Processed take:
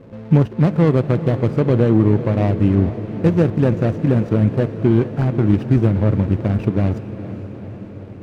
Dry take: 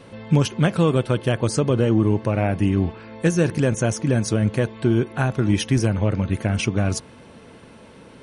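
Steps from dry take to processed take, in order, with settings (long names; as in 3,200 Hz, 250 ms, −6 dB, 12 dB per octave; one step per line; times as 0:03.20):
running median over 41 samples
low-pass filter 2,200 Hz 6 dB per octave
feedback delay with all-pass diffusion 454 ms, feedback 68%, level −13 dB
level +4.5 dB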